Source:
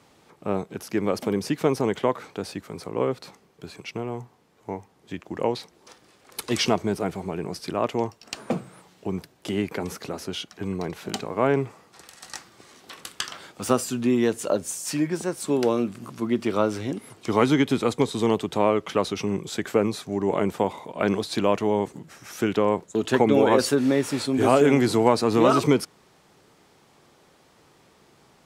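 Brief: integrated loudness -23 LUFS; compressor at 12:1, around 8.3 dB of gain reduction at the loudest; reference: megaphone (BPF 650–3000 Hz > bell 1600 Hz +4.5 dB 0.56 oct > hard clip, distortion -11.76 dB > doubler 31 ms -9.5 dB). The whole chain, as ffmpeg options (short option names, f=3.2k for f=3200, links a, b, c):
-filter_complex "[0:a]acompressor=threshold=-21dB:ratio=12,highpass=650,lowpass=3k,equalizer=f=1.6k:t=o:w=0.56:g=4.5,asoftclip=type=hard:threshold=-26dB,asplit=2[a][b];[b]adelay=31,volume=-9.5dB[c];[a][c]amix=inputs=2:normalize=0,volume=13.5dB"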